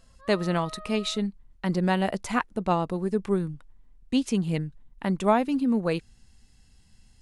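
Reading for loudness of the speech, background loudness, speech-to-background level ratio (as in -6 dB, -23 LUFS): -27.0 LUFS, -44.5 LUFS, 17.5 dB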